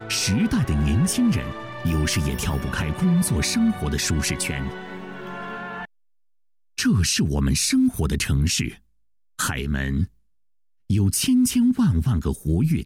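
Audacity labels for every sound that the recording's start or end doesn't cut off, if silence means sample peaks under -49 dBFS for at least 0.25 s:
6.780000	8.790000	sound
9.390000	10.090000	sound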